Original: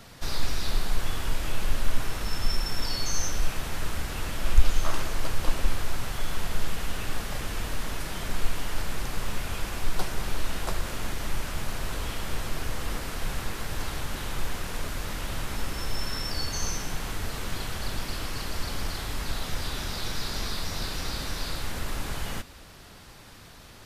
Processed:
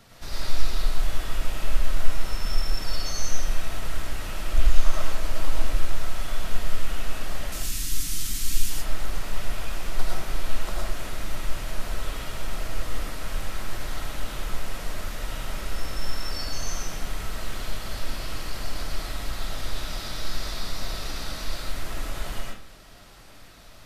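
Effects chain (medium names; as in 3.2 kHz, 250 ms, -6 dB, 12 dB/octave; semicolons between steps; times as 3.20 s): 7.52–8.70 s: FFT filter 290 Hz 0 dB, 530 Hz -20 dB, 6.6 kHz +13 dB; algorithmic reverb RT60 0.42 s, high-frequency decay 0.7×, pre-delay 65 ms, DRR -3 dB; trim -5.5 dB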